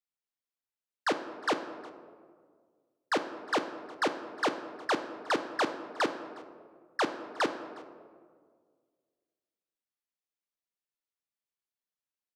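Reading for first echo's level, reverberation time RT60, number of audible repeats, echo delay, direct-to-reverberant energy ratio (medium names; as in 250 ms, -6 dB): -22.5 dB, 1.8 s, 1, 360 ms, 8.0 dB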